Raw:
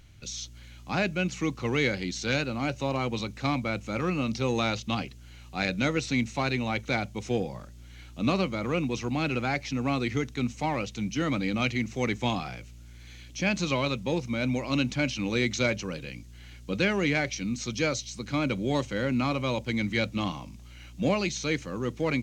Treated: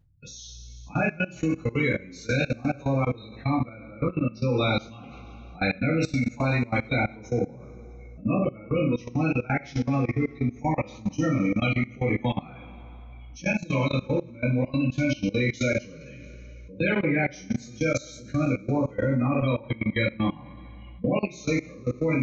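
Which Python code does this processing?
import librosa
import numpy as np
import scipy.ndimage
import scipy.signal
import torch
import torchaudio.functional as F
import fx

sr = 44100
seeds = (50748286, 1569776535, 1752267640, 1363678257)

y = fx.spec_gate(x, sr, threshold_db=-15, keep='strong')
y = fx.rev_double_slope(y, sr, seeds[0], early_s=0.41, late_s=2.1, knee_db=-17, drr_db=-8.5)
y = fx.level_steps(y, sr, step_db=20)
y = y * 10.0 ** (-3.0 / 20.0)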